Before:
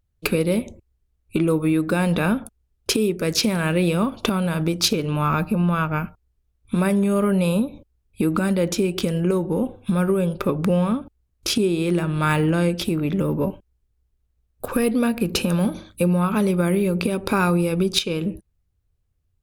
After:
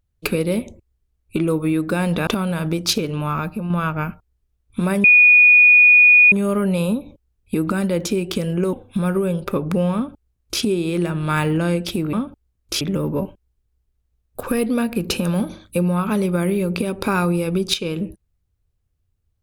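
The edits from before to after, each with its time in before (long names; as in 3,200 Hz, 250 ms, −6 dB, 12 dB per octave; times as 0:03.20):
0:02.27–0:04.22: remove
0:05.00–0:05.65: fade out, to −6.5 dB
0:06.99: insert tone 2,460 Hz −7 dBFS 1.28 s
0:09.40–0:09.66: remove
0:10.87–0:11.55: duplicate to 0:13.06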